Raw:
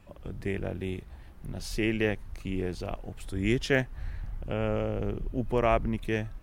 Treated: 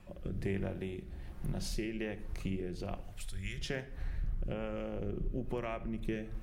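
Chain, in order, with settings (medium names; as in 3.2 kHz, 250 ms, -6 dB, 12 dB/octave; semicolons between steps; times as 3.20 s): 3.00–3.58 s: amplifier tone stack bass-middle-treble 10-0-10; compression 6:1, threshold -35 dBFS, peak gain reduction 15.5 dB; rotary cabinet horn 1.2 Hz; simulated room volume 2300 m³, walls furnished, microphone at 0.94 m; trim +2.5 dB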